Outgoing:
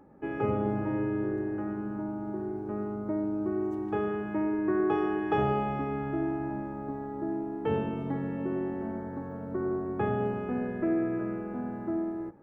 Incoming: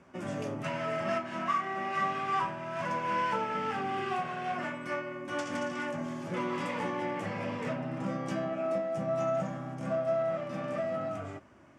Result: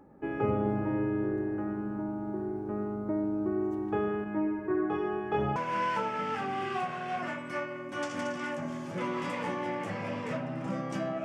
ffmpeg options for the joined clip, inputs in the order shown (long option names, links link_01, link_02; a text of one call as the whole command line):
ffmpeg -i cue0.wav -i cue1.wav -filter_complex "[0:a]asettb=1/sr,asplit=3[link_01][link_02][link_03];[link_01]atrim=end=4.244[link_04];[link_02]atrim=start=4.24:end=5.56,asetpts=PTS-STARTPTS,afade=type=in:duration=0.004:curve=qsin,afade=type=out:start_time=1.316:duration=0.004:curve=qsin,flanger=delay=19:depth=5.2:speed=0.52[link_05];[link_03]atrim=start=5.556[link_06];[link_04][link_05]acrossfade=duration=0.004:curve1=hsin:curve2=qsin[link_07];[link_07][link_06]acrossfade=duration=0.004:curve1=qsin:curve2=hsin,apad=whole_dur=11.24,atrim=end=11.24,atrim=end=5.562[link_08];[1:a]atrim=start=2.918:end=8.6[link_09];[link_08][link_09]acrossfade=duration=0.004:curve1=hsin:curve2=hsin" out.wav